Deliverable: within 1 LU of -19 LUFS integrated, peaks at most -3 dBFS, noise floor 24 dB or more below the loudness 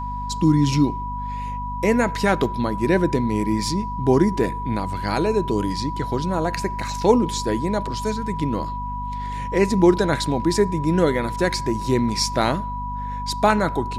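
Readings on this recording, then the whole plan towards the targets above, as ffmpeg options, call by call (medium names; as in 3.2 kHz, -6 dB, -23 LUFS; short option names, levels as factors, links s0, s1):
hum 50 Hz; highest harmonic 250 Hz; hum level -28 dBFS; steady tone 980 Hz; tone level -28 dBFS; loudness -22.0 LUFS; peak level -3.0 dBFS; loudness target -19.0 LUFS
-> -af "bandreject=f=50:t=h:w=6,bandreject=f=100:t=h:w=6,bandreject=f=150:t=h:w=6,bandreject=f=200:t=h:w=6,bandreject=f=250:t=h:w=6"
-af "bandreject=f=980:w=30"
-af "volume=1.41,alimiter=limit=0.708:level=0:latency=1"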